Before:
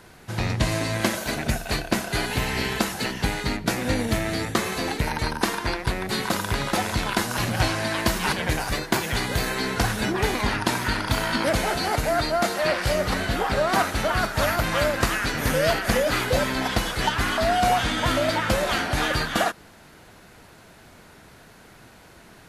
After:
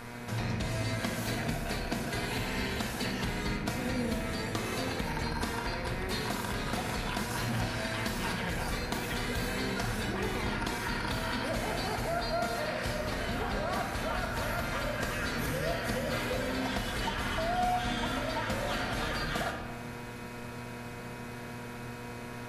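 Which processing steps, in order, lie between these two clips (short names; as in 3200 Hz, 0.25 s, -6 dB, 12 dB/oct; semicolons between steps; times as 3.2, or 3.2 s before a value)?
compressor, threshold -34 dBFS, peak gain reduction 16.5 dB; buzz 120 Hz, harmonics 21, -48 dBFS -3 dB/oct; shoebox room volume 1700 m³, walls mixed, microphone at 1.7 m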